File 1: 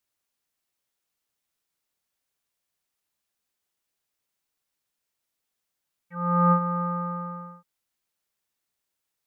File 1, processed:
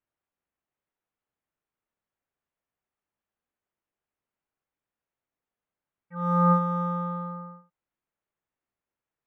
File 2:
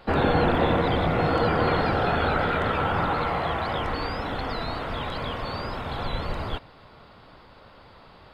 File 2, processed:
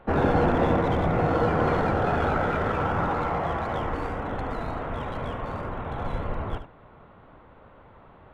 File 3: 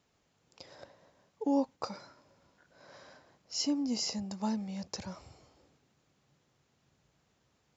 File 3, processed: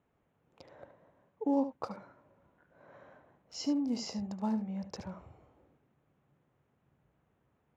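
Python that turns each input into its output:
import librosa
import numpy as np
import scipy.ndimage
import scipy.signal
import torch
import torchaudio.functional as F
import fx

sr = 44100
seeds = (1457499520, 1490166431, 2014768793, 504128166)

y = fx.wiener(x, sr, points=9)
y = fx.high_shelf(y, sr, hz=2900.0, db=-10.0)
y = y + 10.0 ** (-11.0 / 20.0) * np.pad(y, (int(73 * sr / 1000.0), 0))[:len(y)]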